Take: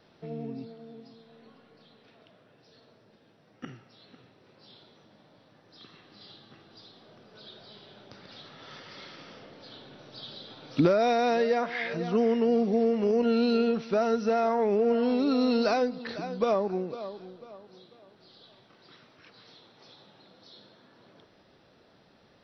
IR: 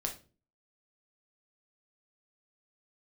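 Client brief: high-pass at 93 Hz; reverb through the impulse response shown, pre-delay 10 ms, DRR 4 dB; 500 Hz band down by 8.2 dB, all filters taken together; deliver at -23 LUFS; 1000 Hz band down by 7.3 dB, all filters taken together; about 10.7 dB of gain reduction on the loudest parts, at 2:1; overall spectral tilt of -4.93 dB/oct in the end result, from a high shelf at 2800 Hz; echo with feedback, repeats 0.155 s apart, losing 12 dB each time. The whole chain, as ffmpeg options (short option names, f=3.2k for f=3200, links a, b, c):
-filter_complex "[0:a]highpass=93,equalizer=f=500:t=o:g=-8,equalizer=f=1k:t=o:g=-6,highshelf=f=2.8k:g=-7,acompressor=threshold=-41dB:ratio=2,aecho=1:1:155|310|465:0.251|0.0628|0.0157,asplit=2[a][b];[1:a]atrim=start_sample=2205,adelay=10[c];[b][c]afir=irnorm=-1:irlink=0,volume=-5.5dB[d];[a][d]amix=inputs=2:normalize=0,volume=15.5dB"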